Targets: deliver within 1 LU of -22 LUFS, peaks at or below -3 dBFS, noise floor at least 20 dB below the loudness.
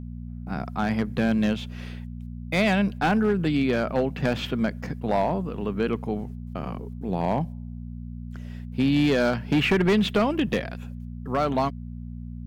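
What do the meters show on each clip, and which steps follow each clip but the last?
clipped 1.2%; flat tops at -15.5 dBFS; hum 60 Hz; harmonics up to 240 Hz; hum level -34 dBFS; loudness -25.0 LUFS; peak -15.5 dBFS; loudness target -22.0 LUFS
-> clip repair -15.5 dBFS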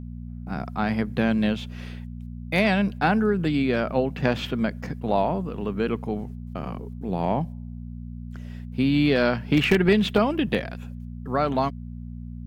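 clipped 0.0%; hum 60 Hz; harmonics up to 240 Hz; hum level -34 dBFS
-> de-hum 60 Hz, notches 4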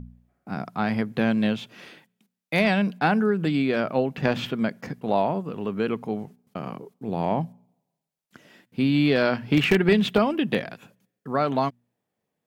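hum none; loudness -24.5 LUFS; peak -6.5 dBFS; loudness target -22.0 LUFS
-> gain +2.5 dB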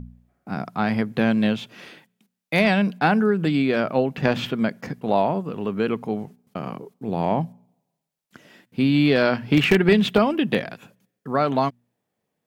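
loudness -22.0 LUFS; peak -4.0 dBFS; noise floor -80 dBFS

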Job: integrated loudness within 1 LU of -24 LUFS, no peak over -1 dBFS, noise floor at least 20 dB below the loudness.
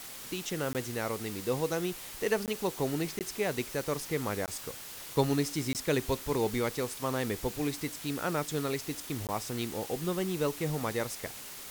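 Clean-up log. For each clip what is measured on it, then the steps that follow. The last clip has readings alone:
dropouts 6; longest dropout 18 ms; noise floor -45 dBFS; noise floor target -53 dBFS; loudness -33.0 LUFS; peak -14.0 dBFS; loudness target -24.0 LUFS
-> interpolate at 0.73/2.46/3.19/4.46/5.73/9.27, 18 ms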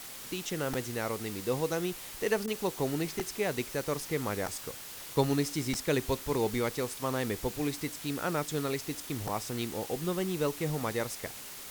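dropouts 0; noise floor -44 dBFS; noise floor target -53 dBFS
-> denoiser 9 dB, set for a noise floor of -44 dBFS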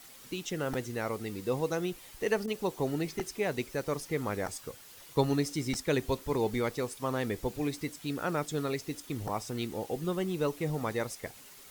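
noise floor -52 dBFS; noise floor target -54 dBFS
-> denoiser 6 dB, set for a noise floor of -52 dBFS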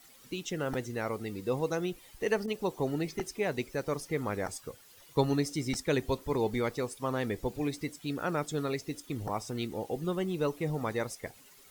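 noise floor -57 dBFS; loudness -33.5 LUFS; peak -14.0 dBFS; loudness target -24.0 LUFS
-> gain +9.5 dB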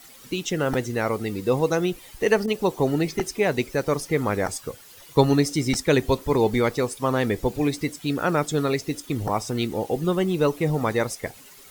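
loudness -24.0 LUFS; peak -4.5 dBFS; noise floor -48 dBFS

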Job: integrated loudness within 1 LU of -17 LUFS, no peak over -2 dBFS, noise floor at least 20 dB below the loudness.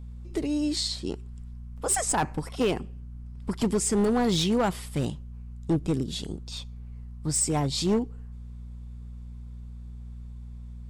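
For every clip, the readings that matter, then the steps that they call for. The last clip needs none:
clipped 1.0%; flat tops at -18.5 dBFS; hum 60 Hz; harmonics up to 240 Hz; hum level -38 dBFS; loudness -27.5 LUFS; peak -18.5 dBFS; loudness target -17.0 LUFS
-> clip repair -18.5 dBFS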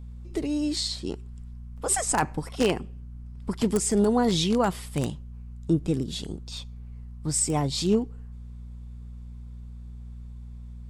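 clipped 0.0%; hum 60 Hz; harmonics up to 180 Hz; hum level -38 dBFS
-> de-hum 60 Hz, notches 3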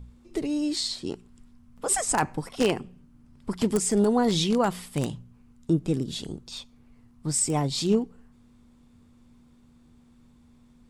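hum none; loudness -26.5 LUFS; peak -9.0 dBFS; loudness target -17.0 LUFS
-> gain +9.5 dB; limiter -2 dBFS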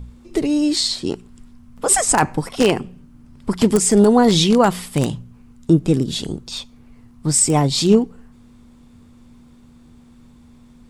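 loudness -17.0 LUFS; peak -2.0 dBFS; noise floor -48 dBFS

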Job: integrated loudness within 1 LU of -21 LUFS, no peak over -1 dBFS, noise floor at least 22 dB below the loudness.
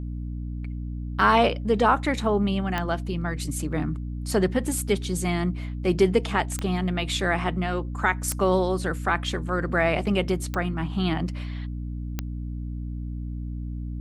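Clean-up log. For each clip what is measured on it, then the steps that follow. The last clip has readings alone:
clicks 5; hum 60 Hz; harmonics up to 300 Hz; hum level -29 dBFS; loudness -26.0 LUFS; peak -7.0 dBFS; loudness target -21.0 LUFS
-> de-click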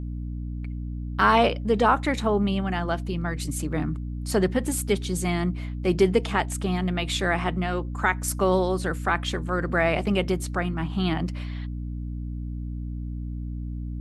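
clicks 0; hum 60 Hz; harmonics up to 300 Hz; hum level -29 dBFS
-> de-hum 60 Hz, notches 5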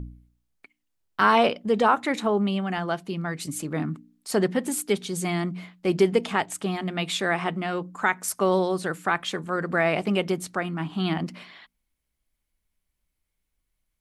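hum none; loudness -25.5 LUFS; peak -7.0 dBFS; loudness target -21.0 LUFS
-> gain +4.5 dB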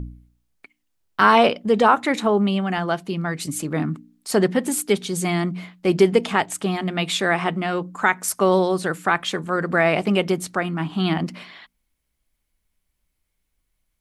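loudness -21.0 LUFS; peak -2.5 dBFS; noise floor -75 dBFS

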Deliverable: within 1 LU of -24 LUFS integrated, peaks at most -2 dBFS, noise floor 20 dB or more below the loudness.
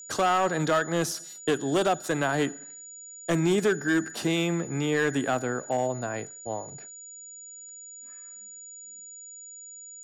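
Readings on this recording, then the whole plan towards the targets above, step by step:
clipped 1.2%; flat tops at -18.0 dBFS; steady tone 6900 Hz; tone level -42 dBFS; loudness -27.0 LUFS; peak -18.0 dBFS; loudness target -24.0 LUFS
-> clip repair -18 dBFS; notch 6900 Hz, Q 30; gain +3 dB

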